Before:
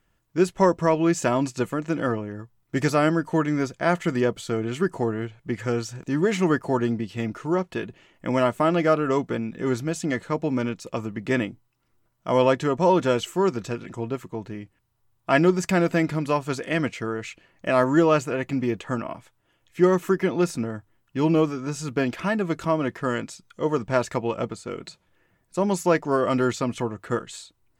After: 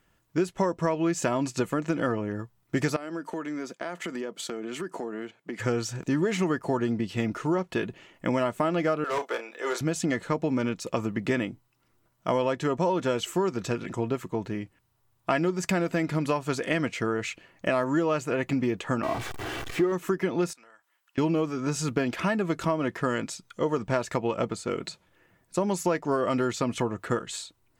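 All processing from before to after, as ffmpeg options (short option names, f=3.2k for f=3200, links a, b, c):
-filter_complex "[0:a]asettb=1/sr,asplit=3[a][b][c];[a]atrim=end=2.964[d];[b]atrim=start=2.96:end=5.6,asetpts=PTS-STARTPTS,afade=t=in:d=0.004:c=qsin,afade=t=out:st=2.636:d=0.004:c=qsin,agate=range=-7dB:threshold=-40dB:ratio=16:release=100:detection=peak,highpass=f=200:w=0.5412,highpass=f=200:w=1.3066,acompressor=threshold=-34dB:ratio=6:attack=3.2:release=140:knee=1:detection=peak[e];[c]atrim=start=5.596[f];[d][e]acrossfade=d=0.004:c1=hsin:c2=qsin[g];[g][f]acrossfade=d=0.004:c1=qsin:c2=hsin,asettb=1/sr,asplit=3[h][i][j];[h]atrim=end=9.044[k];[i]atrim=start=9.04:end=9.81,asetpts=PTS-STARTPTS,afade=t=in:d=0.004:c=qsin,afade=t=out:st=0.766:d=0.004:c=qsin,highpass=f=490:w=0.5412,highpass=f=490:w=1.3066,asoftclip=type=hard:threshold=-25.5dB,asplit=2[l][m];[m]adelay=33,volume=-10dB[n];[l][n]amix=inputs=2:normalize=0,atrim=end_sample=33957[o];[j]atrim=start=9.806[p];[k][o]acrossfade=d=0.004:c1=hsin:c2=qsin[q];[q][p]acrossfade=d=0.004:c1=qsin:c2=hsin,asettb=1/sr,asplit=3[r][s][t];[r]atrim=end=19.034[u];[s]atrim=start=19.03:end=19.92,asetpts=PTS-STARTPTS,afade=t=in:d=0.004:c=qsin,afade=t=out:st=0.886:d=0.004:c=qsin,aeval=exprs='val(0)+0.5*0.0335*sgn(val(0))':c=same,lowpass=f=2.4k:p=1,aecho=1:1:2.6:0.46,atrim=end_sample=39249[v];[t]atrim=start=19.916[w];[u][v]acrossfade=d=0.004:c1=hsin:c2=qsin[x];[x][w]acrossfade=d=0.004:c1=qsin:c2=hsin,asettb=1/sr,asplit=3[y][z][aa];[y]atrim=end=20.534[ab];[z]atrim=start=20.53:end=21.18,asetpts=PTS-STARTPTS,afade=t=in:d=0.004:c=qsin,afade=t=out:st=0.646:d=0.004:c=qsin,highpass=1.1k,acompressor=threshold=-55dB:ratio=6:attack=3.2:release=140:knee=1:detection=peak[ac];[aa]atrim=start=21.176[ad];[ab][ac]acrossfade=d=0.004:c1=hsin:c2=qsin[ae];[ae][ad]acrossfade=d=0.004:c1=qsin:c2=hsin,lowshelf=f=67:g=-7.5,acompressor=threshold=-26dB:ratio=6,volume=3.5dB"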